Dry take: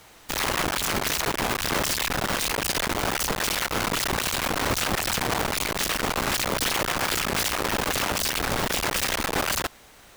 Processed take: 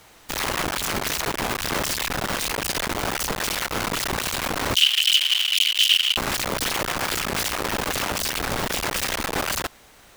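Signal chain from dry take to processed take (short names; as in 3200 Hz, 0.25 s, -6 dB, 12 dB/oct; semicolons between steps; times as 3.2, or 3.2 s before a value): 4.75–6.17 resonant high-pass 3000 Hz, resonance Q 12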